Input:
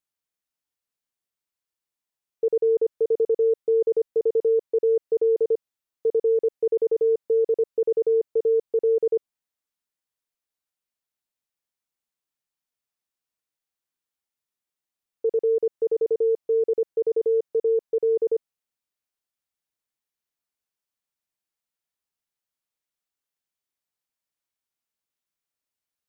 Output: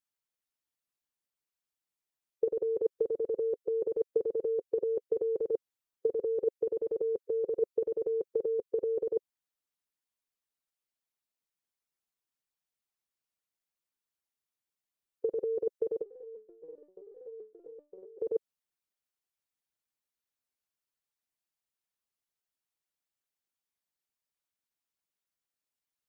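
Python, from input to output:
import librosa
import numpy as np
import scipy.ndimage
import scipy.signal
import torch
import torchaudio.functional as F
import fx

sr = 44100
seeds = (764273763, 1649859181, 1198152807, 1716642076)

y = fx.hpss(x, sr, part='harmonic', gain_db=-11)
y = fx.resonator_held(y, sr, hz=7.7, low_hz=160.0, high_hz=470.0, at=(16.02, 18.18), fade=0.02)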